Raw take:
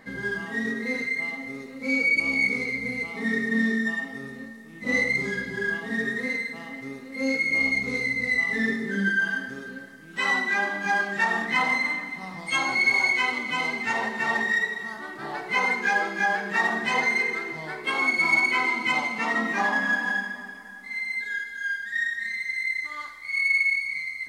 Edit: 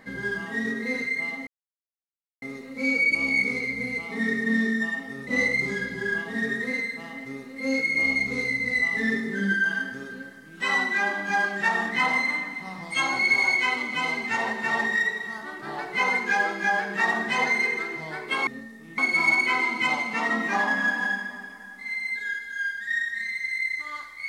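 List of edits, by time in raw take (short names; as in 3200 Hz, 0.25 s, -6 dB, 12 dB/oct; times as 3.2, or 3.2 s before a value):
1.47 insert silence 0.95 s
4.32–4.83 move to 18.03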